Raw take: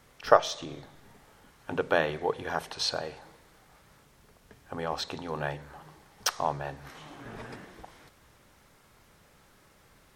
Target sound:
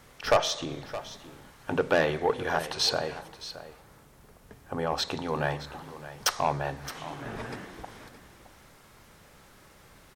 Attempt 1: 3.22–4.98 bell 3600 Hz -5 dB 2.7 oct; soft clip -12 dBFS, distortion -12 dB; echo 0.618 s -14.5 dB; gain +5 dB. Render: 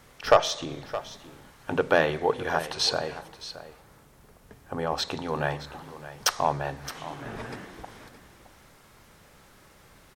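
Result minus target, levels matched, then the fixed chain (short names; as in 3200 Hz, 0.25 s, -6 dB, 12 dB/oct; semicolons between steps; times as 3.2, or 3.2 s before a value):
soft clip: distortion -6 dB
3.22–4.98 bell 3600 Hz -5 dB 2.7 oct; soft clip -19.5 dBFS, distortion -7 dB; echo 0.618 s -14.5 dB; gain +5 dB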